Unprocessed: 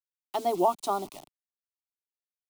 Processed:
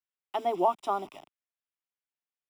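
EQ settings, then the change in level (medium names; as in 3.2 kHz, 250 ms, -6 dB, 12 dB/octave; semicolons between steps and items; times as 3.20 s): Savitzky-Golay filter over 25 samples; tilt EQ +2 dB/octave; 0.0 dB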